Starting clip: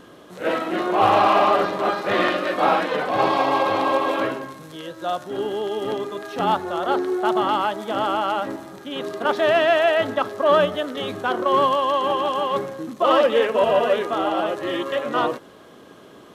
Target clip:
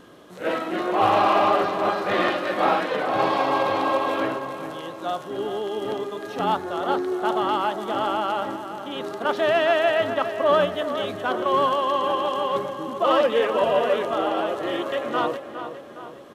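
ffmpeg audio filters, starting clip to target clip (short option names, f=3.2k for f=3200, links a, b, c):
-filter_complex "[0:a]asplit=2[a][b];[b]adelay=411,lowpass=f=3.5k:p=1,volume=-10dB,asplit=2[c][d];[d]adelay=411,lowpass=f=3.5k:p=1,volume=0.53,asplit=2[e][f];[f]adelay=411,lowpass=f=3.5k:p=1,volume=0.53,asplit=2[g][h];[h]adelay=411,lowpass=f=3.5k:p=1,volume=0.53,asplit=2[i][j];[j]adelay=411,lowpass=f=3.5k:p=1,volume=0.53,asplit=2[k][l];[l]adelay=411,lowpass=f=3.5k:p=1,volume=0.53[m];[a][c][e][g][i][k][m]amix=inputs=7:normalize=0,volume=-2.5dB"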